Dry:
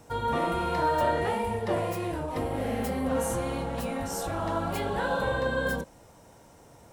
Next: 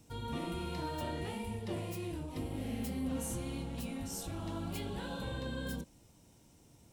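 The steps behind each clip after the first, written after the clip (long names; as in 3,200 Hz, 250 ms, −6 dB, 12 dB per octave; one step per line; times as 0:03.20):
flat-topped bell 920 Hz −11 dB 2.4 octaves
level −5.5 dB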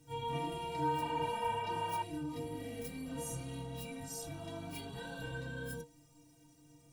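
stiff-string resonator 140 Hz, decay 0.28 s, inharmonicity 0.03
backwards echo 30 ms −9 dB
healed spectral selection 0:01.04–0:02.00, 550–3,600 Hz before
level +8.5 dB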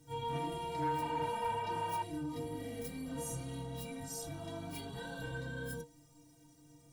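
notch filter 2,600 Hz, Q 5.5
soft clipping −28 dBFS, distortion −21 dB
level +1 dB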